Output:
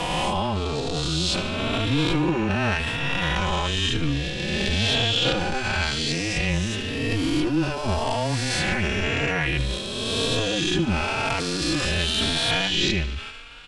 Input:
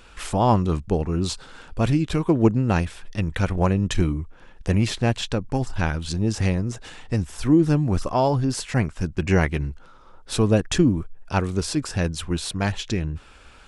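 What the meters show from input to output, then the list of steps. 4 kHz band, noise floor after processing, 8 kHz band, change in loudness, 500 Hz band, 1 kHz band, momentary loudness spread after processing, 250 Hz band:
+11.0 dB, −30 dBFS, +2.0 dB, 0.0 dB, −2.0 dB, 0.0 dB, 5 LU, −3.5 dB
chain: peak hold with a rise ahead of every peak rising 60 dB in 2.29 s
frequency shifter −13 Hz
brickwall limiter −13 dBFS, peak gain reduction 10.5 dB
parametric band 3,000 Hz +12.5 dB 1.2 octaves
transient designer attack −11 dB, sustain +8 dB
high-shelf EQ 6,900 Hz −5 dB
delay with a high-pass on its return 73 ms, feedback 65%, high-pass 1,400 Hz, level −14.5 dB
barber-pole flanger 3.7 ms +0.95 Hz

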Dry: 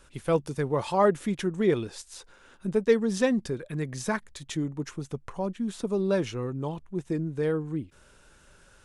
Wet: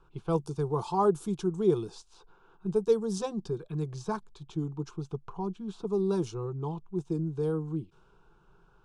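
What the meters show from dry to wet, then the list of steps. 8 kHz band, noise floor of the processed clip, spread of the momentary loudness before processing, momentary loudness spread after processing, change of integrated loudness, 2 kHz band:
−7.0 dB, −63 dBFS, 13 LU, 11 LU, −3.0 dB, −15.5 dB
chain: phaser with its sweep stopped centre 380 Hz, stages 8
dynamic equaliser 2,500 Hz, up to −6 dB, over −51 dBFS, Q 1
low-pass that shuts in the quiet parts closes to 1,700 Hz, open at −24 dBFS

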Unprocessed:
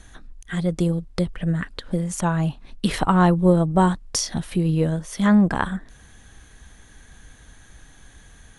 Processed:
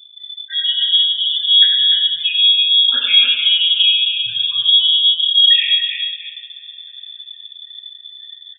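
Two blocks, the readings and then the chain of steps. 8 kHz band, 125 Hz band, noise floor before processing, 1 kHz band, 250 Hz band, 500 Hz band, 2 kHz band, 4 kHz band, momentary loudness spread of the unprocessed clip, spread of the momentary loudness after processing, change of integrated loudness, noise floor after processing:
below −40 dB, below −30 dB, −49 dBFS, below −20 dB, below −35 dB, below −25 dB, +7.0 dB, +29.0 dB, 10 LU, 12 LU, +10.5 dB, −41 dBFS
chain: delay that plays each chunk backwards 199 ms, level −14 dB
gate on every frequency bin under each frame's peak −10 dB strong
automatic gain control gain up to 5 dB
brickwall limiter −12.5 dBFS, peak gain reduction 10 dB
multi-tap delay 96/292/323 ms −6.5/−7/−11.5 dB
coupled-rooms reverb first 0.73 s, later 3 s, from −18 dB, DRR −7 dB
bad sample-rate conversion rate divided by 4×, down filtered, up zero stuff
voice inversion scrambler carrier 3,500 Hz
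level −4 dB

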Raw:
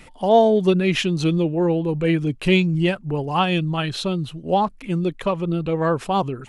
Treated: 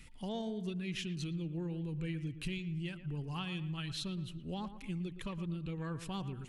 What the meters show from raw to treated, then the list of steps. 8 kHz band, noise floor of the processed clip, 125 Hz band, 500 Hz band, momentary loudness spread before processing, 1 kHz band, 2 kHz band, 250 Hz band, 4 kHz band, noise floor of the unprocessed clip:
−12.5 dB, −50 dBFS, −15.0 dB, −26.0 dB, 8 LU, −26.0 dB, −19.5 dB, −18.0 dB, −16.0 dB, −45 dBFS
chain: guitar amp tone stack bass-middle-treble 6-0-2
downward compressor, threshold −43 dBFS, peak gain reduction 12.5 dB
on a send: delay with a low-pass on its return 116 ms, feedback 39%, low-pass 2,600 Hz, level −12 dB
on the sum: level +6.5 dB

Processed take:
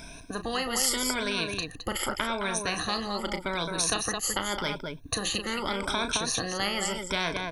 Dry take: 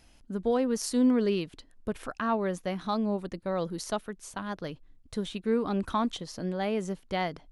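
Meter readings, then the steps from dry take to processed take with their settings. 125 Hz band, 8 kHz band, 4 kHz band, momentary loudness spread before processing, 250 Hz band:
−1.5 dB, +13.5 dB, +12.5 dB, 12 LU, −6.0 dB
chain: rippled gain that drifts along the octave scale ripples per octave 1.6, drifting +0.84 Hz, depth 22 dB
on a send: loudspeakers that aren't time-aligned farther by 12 metres −11 dB, 74 metres −12 dB
on the sum: every bin compressed towards the loudest bin 4 to 1

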